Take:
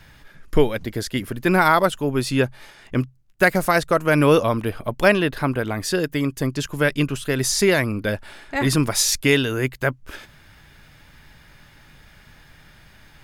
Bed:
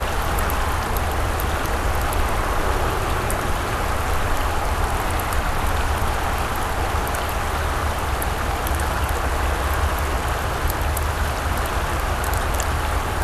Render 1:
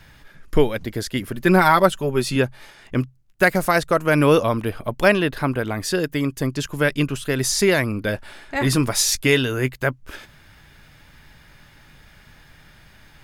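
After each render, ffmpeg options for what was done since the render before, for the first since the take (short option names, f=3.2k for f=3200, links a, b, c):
-filter_complex "[0:a]asettb=1/sr,asplit=3[a][b][c];[a]atrim=end=1.344[d];[b]atrim=start=1.34:end=2.36,asetpts=PTS-STARTPTS,afade=t=in:d=0.004:c=qsin,afade=t=out:st=1.016:d=0.004:c=qsin,aecho=1:1:5.2:0.54,atrim=end_sample=44982[e];[c]atrim=start=2.356[f];[d][e]acrossfade=d=0.004:c1=hsin:c2=qsin[g];[g][f]acrossfade=d=0.004:c1=qsin:c2=hsin,asettb=1/sr,asplit=3[h][i][j];[h]atrim=end=8.064[k];[i]atrim=start=8.06:end=9.76,asetpts=PTS-STARTPTS,afade=t=in:d=0.004:c=qsin,afade=t=out:st=1.696:d=0.004:c=qsin,asplit=2[l][m];[m]adelay=16,volume=-13dB[n];[l][n]amix=inputs=2:normalize=0,atrim=end_sample=74970[o];[j]atrim=start=9.756[p];[k][o]acrossfade=d=0.004:c1=hsin:c2=qsin[q];[q][p]acrossfade=d=0.004:c1=qsin:c2=hsin"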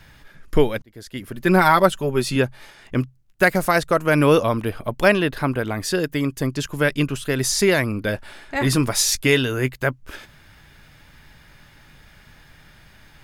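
-filter_complex "[0:a]asplit=2[a][b];[a]atrim=end=0.82,asetpts=PTS-STARTPTS,afade=t=out:st=0.816:d=0.004:c=hsin[c];[b]atrim=start=0.82,asetpts=PTS-STARTPTS,afade=t=in:d=0.79[d];[c][d]concat=n=2:v=0:a=1"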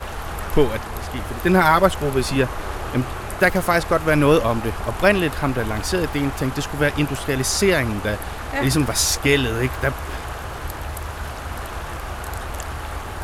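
-filter_complex "[1:a]volume=-7.5dB[a];[0:a][a]amix=inputs=2:normalize=0"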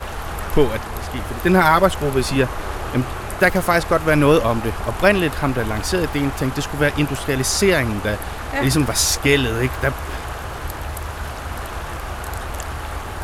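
-af "volume=1.5dB,alimiter=limit=-2dB:level=0:latency=1"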